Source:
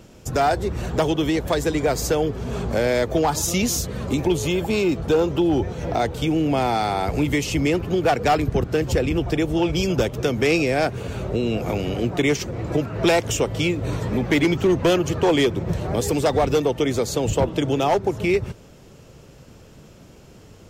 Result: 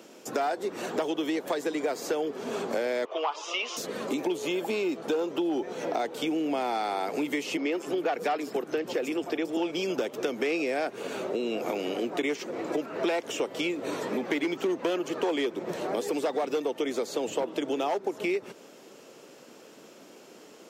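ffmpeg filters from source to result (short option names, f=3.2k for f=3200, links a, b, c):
-filter_complex "[0:a]asettb=1/sr,asplit=3[a][b][c];[a]atrim=end=3.054[d];[b]atrim=start=3.05:end=3.77,asetpts=PTS-STARTPTS,afade=t=in:d=0.004:c=qsin,afade=t=out:st=0.716:d=0.004:c=qsin,highpass=f=480:w=0.5412,highpass=f=480:w=1.3066,equalizer=f=510:t=q:w=4:g=-5,equalizer=f=760:t=q:w=4:g=-4,equalizer=f=1.1k:t=q:w=4:g=9,equalizer=f=1.7k:t=q:w=4:g=-8,equalizer=f=2.9k:t=q:w=4:g=8,equalizer=f=4.2k:t=q:w=4:g=-9,lowpass=f=4.4k:w=0.5412,lowpass=f=4.4k:w=1.3066[e];[c]atrim=start=3.766[f];[d][e]acrossfade=d=0.004:c1=hsin:c2=qsin[g];[g][f]acrossfade=d=0.004:c1=qsin:c2=hsin,asettb=1/sr,asplit=3[h][i][j];[h]atrim=end=7.574[k];[i]atrim=start=7.57:end=9.57,asetpts=PTS-STARTPTS,afade=t=in:d=0.004:c=qsin,afade=t=out:st=1.996:d=0.004:c=qsin,acrossover=split=190|5400[l][m][n];[n]adelay=150[o];[l]adelay=290[p];[p][m][o]amix=inputs=3:normalize=0,atrim=end_sample=88200[q];[j]atrim=start=9.566[r];[k][q]acrossfade=d=0.004:c1=hsin:c2=qsin[s];[s][r]acrossfade=d=0.004:c1=qsin:c2=hsin,acrossover=split=3700[t][u];[u]acompressor=threshold=-36dB:ratio=4:attack=1:release=60[v];[t][v]amix=inputs=2:normalize=0,highpass=f=260:w=0.5412,highpass=f=260:w=1.3066,acompressor=threshold=-28dB:ratio=3"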